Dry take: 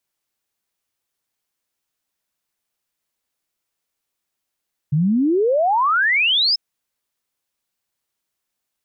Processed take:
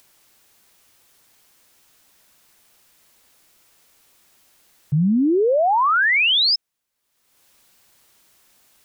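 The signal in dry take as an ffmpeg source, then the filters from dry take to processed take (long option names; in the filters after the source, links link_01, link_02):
-f lavfi -i "aevalsrc='0.2*clip(min(t,1.64-t)/0.01,0,1)*sin(2*PI*140*1.64/log(5300/140)*(exp(log(5300/140)*t/1.64)-1))':duration=1.64:sample_rate=44100"
-af "acompressor=mode=upward:threshold=-39dB:ratio=2.5"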